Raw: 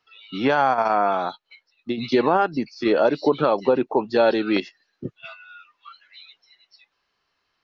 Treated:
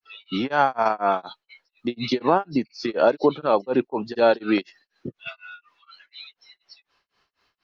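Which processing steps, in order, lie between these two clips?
grains 0.255 s, grains 4.1/s, spray 29 ms, pitch spread up and down by 0 st; in parallel at +1.5 dB: compressor, threshold -31 dBFS, peak gain reduction 15.5 dB

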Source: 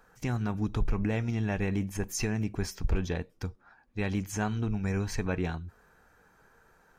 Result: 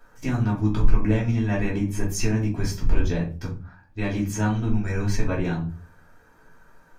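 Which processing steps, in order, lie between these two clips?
shoebox room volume 180 m³, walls furnished, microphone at 2.8 m; gain -1 dB

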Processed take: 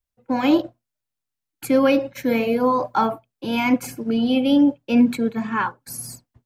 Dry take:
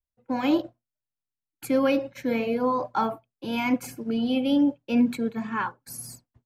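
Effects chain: 2.14–2.97 high shelf 11000 Hz +11.5 dB; gain +5.5 dB

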